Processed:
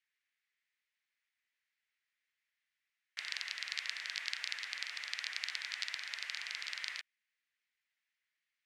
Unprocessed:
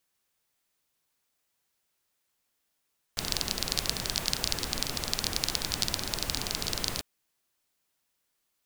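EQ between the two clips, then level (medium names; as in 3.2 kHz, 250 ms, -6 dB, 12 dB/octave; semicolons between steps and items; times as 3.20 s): ladder band-pass 2.2 kHz, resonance 60%; +5.5 dB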